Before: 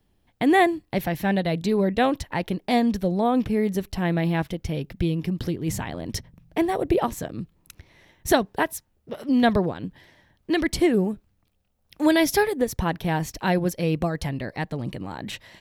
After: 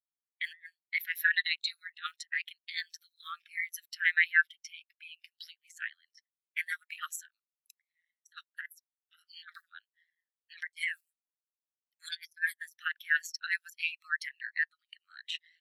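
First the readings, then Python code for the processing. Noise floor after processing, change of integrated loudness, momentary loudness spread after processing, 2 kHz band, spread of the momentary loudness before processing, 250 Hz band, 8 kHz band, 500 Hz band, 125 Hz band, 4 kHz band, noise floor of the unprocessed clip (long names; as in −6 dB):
below −85 dBFS, −9.0 dB, 22 LU, +0.5 dB, 14 LU, below −40 dB, −11.0 dB, below −40 dB, below −40 dB, −5.0 dB, −68 dBFS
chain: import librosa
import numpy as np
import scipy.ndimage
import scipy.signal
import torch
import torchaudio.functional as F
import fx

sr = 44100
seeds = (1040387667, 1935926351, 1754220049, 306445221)

y = fx.block_float(x, sr, bits=7)
y = scipy.signal.sosfilt(scipy.signal.butter(16, 1300.0, 'highpass', fs=sr, output='sos'), y)
y = fx.high_shelf(y, sr, hz=3100.0, db=11.0)
y = y * np.sin(2.0 * np.pi * 83.0 * np.arange(len(y)) / sr)
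y = fx.over_compress(y, sr, threshold_db=-32.0, ratio=-0.5)
y = fx.spectral_expand(y, sr, expansion=2.5)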